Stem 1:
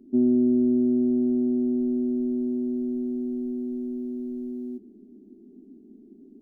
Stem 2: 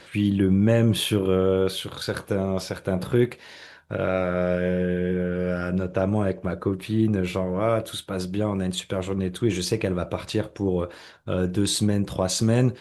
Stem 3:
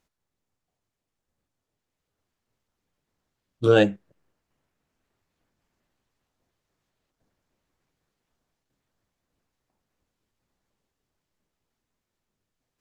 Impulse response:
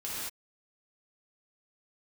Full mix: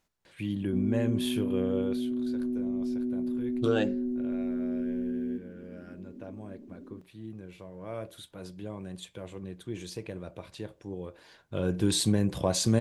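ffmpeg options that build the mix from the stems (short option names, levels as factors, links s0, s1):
-filter_complex "[0:a]lowshelf=f=210:g=9.5,alimiter=limit=0.0668:level=0:latency=1,adelay=600,volume=0.75[s0];[1:a]bandreject=f=1300:w=9.5,adelay=250,volume=2.37,afade=t=out:st=1.8:d=0.3:silence=0.298538,afade=t=in:st=7.62:d=0.4:silence=0.473151,afade=t=in:st=11.13:d=0.7:silence=0.266073[s1];[2:a]bandreject=f=60:t=h:w=6,bandreject=f=120:t=h:w=6,bandreject=f=180:t=h:w=6,bandreject=f=240:t=h:w=6,bandreject=f=300:t=h:w=6,bandreject=f=360:t=h:w=6,bandreject=f=420:t=h:w=6,bandreject=f=480:t=h:w=6,bandreject=f=540:t=h:w=6,acompressor=threshold=0.0355:ratio=2.5,volume=1.06[s2];[s0][s1][s2]amix=inputs=3:normalize=0"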